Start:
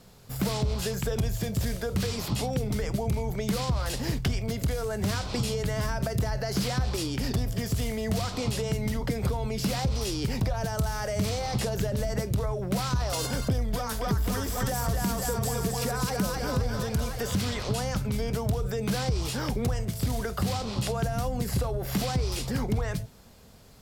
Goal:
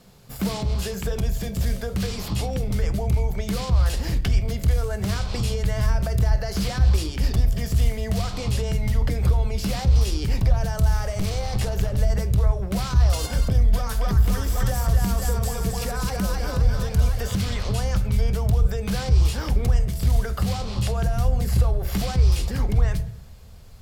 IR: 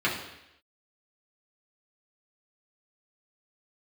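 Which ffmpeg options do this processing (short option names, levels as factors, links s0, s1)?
-filter_complex "[0:a]asettb=1/sr,asplit=3[s0][s1][s2];[s0]atrim=end=10.964[s3];[s1]atrim=start=10.96:end=11.98,asetpts=PTS-STARTPTS,afade=t=in:d=0.004:c=qsin,afade=t=out:st=1.016:d=0.004:c=qsin,aeval=exprs='clip(val(0),-1,0.0473)':c=same[s4];[s2]atrim=start=11.976[s5];[s3][s4]acrossfade=d=0.004:c1=hsin:c2=qsin[s6];[s6][s5]acrossfade=d=0.004:c1=qsin:c2=hsin,asubboost=boost=6:cutoff=78,asplit=2[s7][s8];[1:a]atrim=start_sample=2205,lowshelf=f=230:g=11[s9];[s8][s9]afir=irnorm=-1:irlink=0,volume=0.0794[s10];[s7][s10]amix=inputs=2:normalize=0"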